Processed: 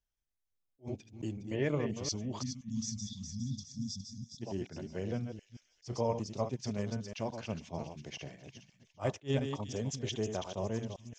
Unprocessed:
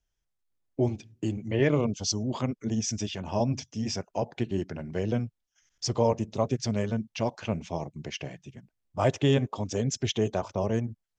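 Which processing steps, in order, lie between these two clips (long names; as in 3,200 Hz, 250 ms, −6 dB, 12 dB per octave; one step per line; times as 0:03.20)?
delay that plays each chunk backwards 174 ms, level −7.5 dB
time-frequency box erased 0:02.42–0:04.42, 260–3,300 Hz
on a send: delay with a high-pass on its return 412 ms, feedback 50%, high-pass 3,400 Hz, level −8 dB
on the sum: level that may rise only so fast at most 370 dB per second
level −8.5 dB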